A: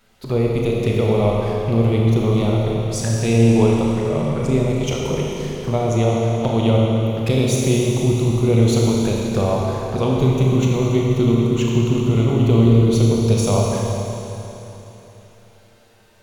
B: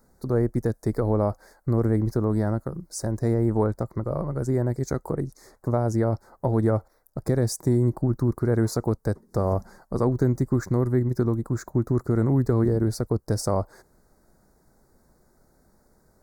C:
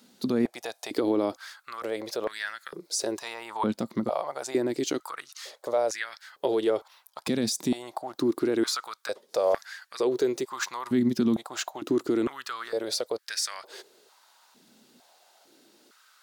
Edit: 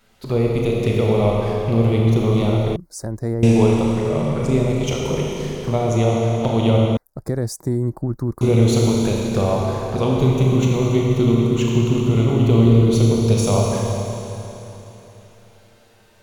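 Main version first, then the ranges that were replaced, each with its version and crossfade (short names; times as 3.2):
A
2.76–3.43 from B
6.97–8.41 from B
not used: C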